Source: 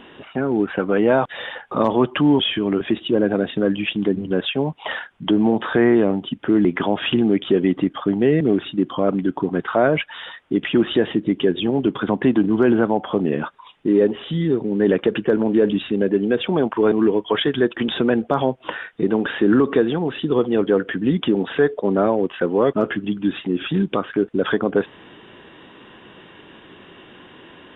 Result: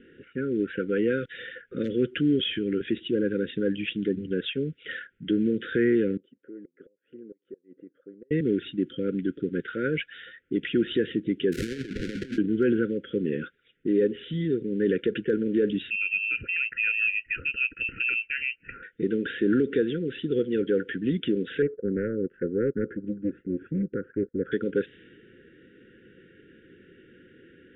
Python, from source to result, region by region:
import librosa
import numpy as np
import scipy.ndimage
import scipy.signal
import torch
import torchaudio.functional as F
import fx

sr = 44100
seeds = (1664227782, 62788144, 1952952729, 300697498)

y = fx.chain(x, sr, fx.bandpass_q(hz=650.0, q=5.7),
    fx.gate_flip(shuts_db=-24.0, range_db=-28), at=(6.17, 8.31))
y = fx.chain(y, sr, fx.hum_notches(base_hz=50, count=5),
    fx.over_compress(threshold_db=-23.0, ratio=-0.5),
    fx.sample_hold(seeds[0], rate_hz=1300.0, jitter_pct=20), at=(11.52, 12.38))
y = fx.chain(y, sr, fx.peak_eq(hz=700.0, db=-13.5, octaves=0.74),
    fx.freq_invert(carrier_hz=2900), at=(15.9, 18.83))
y = fx.chain(y, sr, fx.law_mismatch(coded='A'),
    fx.lowpass(hz=1200.0, slope=24),
    fx.doppler_dist(depth_ms=0.47), at=(21.62, 24.52))
y = scipy.signal.sosfilt(scipy.signal.cheby1(5, 1.0, [520.0, 1400.0], 'bandstop', fs=sr, output='sos'), y)
y = fx.env_lowpass(y, sr, base_hz=1500.0, full_db=-15.0)
y = F.gain(torch.from_numpy(y), -6.5).numpy()